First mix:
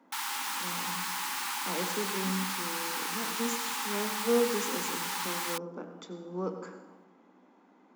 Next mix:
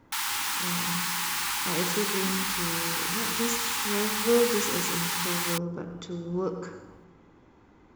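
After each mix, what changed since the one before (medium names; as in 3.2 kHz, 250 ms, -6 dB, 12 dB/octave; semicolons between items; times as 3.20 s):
master: remove rippled Chebyshev high-pass 180 Hz, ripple 6 dB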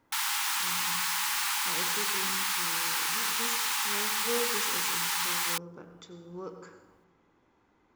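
speech -7.0 dB; master: add bass shelf 350 Hz -8.5 dB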